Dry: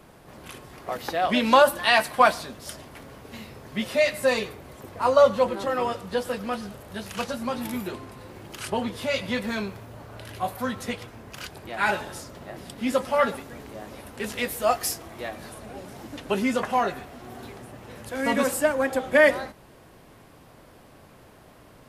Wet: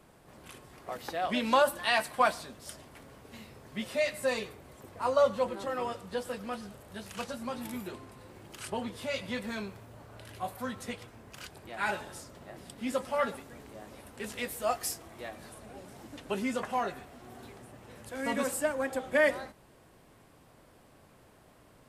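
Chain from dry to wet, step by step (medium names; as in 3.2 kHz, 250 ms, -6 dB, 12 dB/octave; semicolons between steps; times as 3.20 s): peaking EQ 8.2 kHz +4.5 dB 0.37 oct; trim -8 dB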